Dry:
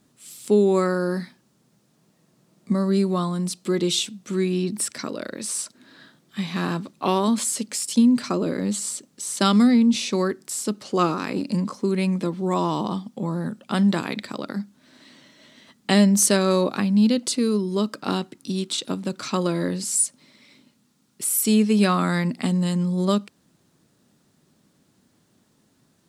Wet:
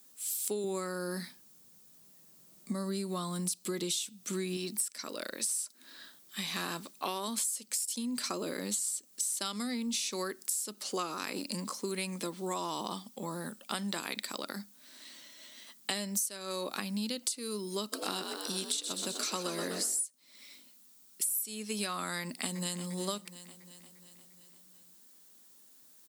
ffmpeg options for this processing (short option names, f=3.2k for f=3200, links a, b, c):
-filter_complex "[0:a]asettb=1/sr,asplit=3[a][b][c];[a]atrim=end=0.644[d];[b]atrim=start=0.64:end=4.57,asetpts=PTS-STARTPTS,afade=t=in:d=0.004:c=qsin,afade=t=out:st=3.926:d=0.004:c=qsin,equalizer=f=97:t=o:w=2.4:g=10.5[e];[c]atrim=start=4.566[f];[d][e]acrossfade=d=0.004:c1=hsin:c2=qsin[g];[g][f]acrossfade=d=0.004:c1=qsin:c2=hsin,asplit=3[h][i][j];[h]afade=t=out:st=17.92:d=0.02[k];[i]asplit=9[l][m][n][o][p][q][r][s][t];[m]adelay=125,afreqshift=53,volume=-8.5dB[u];[n]adelay=250,afreqshift=106,volume=-12.5dB[v];[o]adelay=375,afreqshift=159,volume=-16.5dB[w];[p]adelay=500,afreqshift=212,volume=-20.5dB[x];[q]adelay=625,afreqshift=265,volume=-24.6dB[y];[r]adelay=750,afreqshift=318,volume=-28.6dB[z];[s]adelay=875,afreqshift=371,volume=-32.6dB[aa];[t]adelay=1000,afreqshift=424,volume=-36.6dB[ab];[l][u][v][w][x][y][z][aa][ab]amix=inputs=9:normalize=0,afade=t=in:st=17.92:d=0.02,afade=t=out:st=20.02:d=0.02[ac];[j]afade=t=in:st=20.02:d=0.02[ad];[k][ac][ad]amix=inputs=3:normalize=0,asplit=2[ae][af];[af]afade=t=in:st=22.2:d=0.01,afade=t=out:st=22.84:d=0.01,aecho=0:1:350|700|1050|1400|1750|2100:0.199526|0.119716|0.0718294|0.0430977|0.0258586|0.0155152[ag];[ae][ag]amix=inputs=2:normalize=0,aemphasis=mode=production:type=riaa,acompressor=threshold=-25dB:ratio=16,equalizer=f=90:t=o:w=0.64:g=-10,volume=-5.5dB"